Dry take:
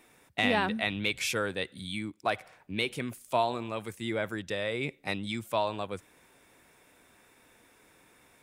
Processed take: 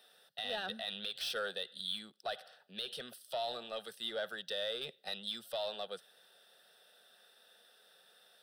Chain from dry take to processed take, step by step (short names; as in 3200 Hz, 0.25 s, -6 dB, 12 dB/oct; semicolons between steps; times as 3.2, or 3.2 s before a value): Bessel high-pass 300 Hz, order 8; band shelf 5100 Hz +8.5 dB; limiter -20 dBFS, peak gain reduction 10 dB; soft clip -26 dBFS, distortion -14 dB; fixed phaser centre 1500 Hz, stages 8; gain -2 dB